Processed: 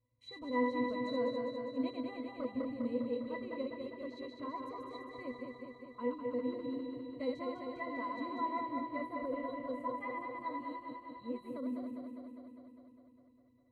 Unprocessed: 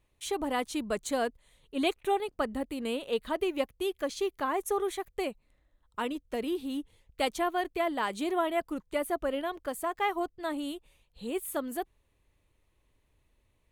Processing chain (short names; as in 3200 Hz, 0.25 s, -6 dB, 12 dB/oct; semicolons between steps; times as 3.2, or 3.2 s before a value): regenerating reverse delay 0.101 s, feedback 83%, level -3.5 dB; octave resonator B, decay 0.16 s; gain +3.5 dB